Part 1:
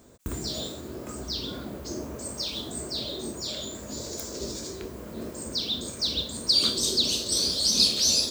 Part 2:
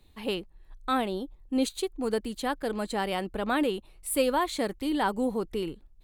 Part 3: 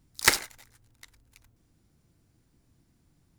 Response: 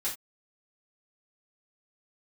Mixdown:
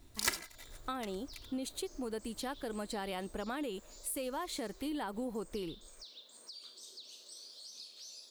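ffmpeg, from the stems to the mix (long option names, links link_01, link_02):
-filter_complex "[0:a]highpass=590,acompressor=threshold=-38dB:ratio=3,volume=-15dB[link_01];[1:a]crystalizer=i=0.5:c=0,volume=-5dB[link_02];[2:a]aecho=1:1:3:0.89,volume=2.5dB[link_03];[link_01][link_02]amix=inputs=2:normalize=0,alimiter=level_in=1.5dB:limit=-24dB:level=0:latency=1:release=81,volume=-1.5dB,volume=0dB[link_04];[link_03][link_04]amix=inputs=2:normalize=0,acompressor=threshold=-36dB:ratio=3"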